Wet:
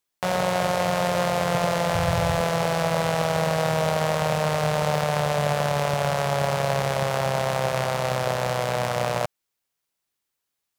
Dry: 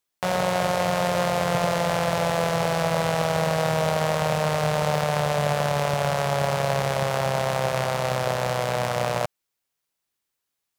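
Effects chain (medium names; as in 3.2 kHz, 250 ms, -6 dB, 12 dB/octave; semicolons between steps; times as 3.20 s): 1.95–2.41 s: resonant low shelf 140 Hz +13 dB, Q 1.5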